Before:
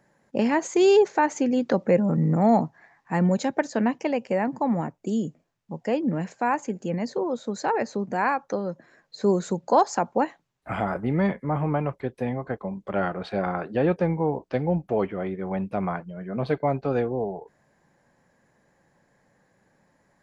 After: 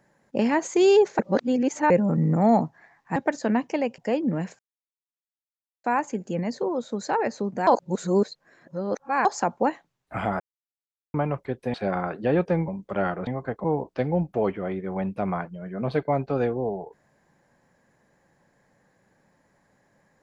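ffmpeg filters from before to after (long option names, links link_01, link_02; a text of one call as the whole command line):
ffmpeg -i in.wav -filter_complex "[0:a]asplit=14[link_01][link_02][link_03][link_04][link_05][link_06][link_07][link_08][link_09][link_10][link_11][link_12][link_13][link_14];[link_01]atrim=end=1.192[link_15];[link_02]atrim=start=1.188:end=1.902,asetpts=PTS-STARTPTS,areverse[link_16];[link_03]atrim=start=1.898:end=3.162[link_17];[link_04]atrim=start=3.468:end=4.292[link_18];[link_05]atrim=start=5.778:end=6.39,asetpts=PTS-STARTPTS,afade=type=out:start_time=0.608:duration=0.004:curve=hsin,apad=pad_dur=1.25[link_19];[link_06]atrim=start=6.39:end=8.222,asetpts=PTS-STARTPTS,afade=type=in:duration=0.004:curve=hsin[link_20];[link_07]atrim=start=8.218:end=9.802,asetpts=PTS-STARTPTS,areverse[link_21];[link_08]atrim=start=9.798:end=10.95,asetpts=PTS-STARTPTS,afade=type=out:start_time=1.148:duration=0.004:curve=hsin[link_22];[link_09]atrim=start=10.95:end=11.69,asetpts=PTS-STARTPTS,volume=0[link_23];[link_10]atrim=start=11.69:end=12.292,asetpts=PTS-STARTPTS,afade=type=in:duration=0.004:curve=hsin[link_24];[link_11]atrim=start=13.248:end=14.192[link_25];[link_12]atrim=start=12.658:end=13.252[link_26];[link_13]atrim=start=12.288:end=12.662[link_27];[link_14]atrim=start=14.188[link_28];[link_15][link_16]acrossfade=duration=0.004:curve1=hsin:curve2=hsin[link_29];[link_29][link_17]acrossfade=duration=0.004:curve1=hsin:curve2=hsin[link_30];[link_30][link_18]acrossfade=duration=0.004:curve1=hsin:curve2=hsin[link_31];[link_19][link_20]concat=n=2:v=0:a=1[link_32];[link_31][link_32]acrossfade=duration=0.004:curve1=hsin:curve2=hsin[link_33];[link_33][link_21]acrossfade=duration=0.004:curve1=hsin:curve2=hsin[link_34];[link_22][link_23][link_24]concat=n=3:v=0:a=1[link_35];[link_34][link_35]acrossfade=duration=0.004:curve1=hsin:curve2=hsin[link_36];[link_36][link_25]acrossfade=duration=0.004:curve1=hsin:curve2=hsin[link_37];[link_37][link_26]acrossfade=duration=0.004:curve1=hsin:curve2=hsin[link_38];[link_38][link_27]acrossfade=duration=0.004:curve1=hsin:curve2=hsin[link_39];[link_39][link_28]acrossfade=duration=0.004:curve1=hsin:curve2=hsin" out.wav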